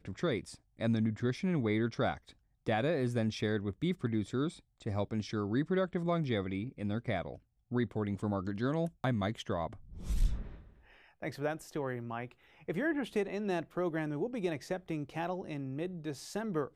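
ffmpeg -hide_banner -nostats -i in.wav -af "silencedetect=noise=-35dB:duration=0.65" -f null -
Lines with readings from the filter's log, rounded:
silence_start: 10.41
silence_end: 11.22 | silence_duration: 0.81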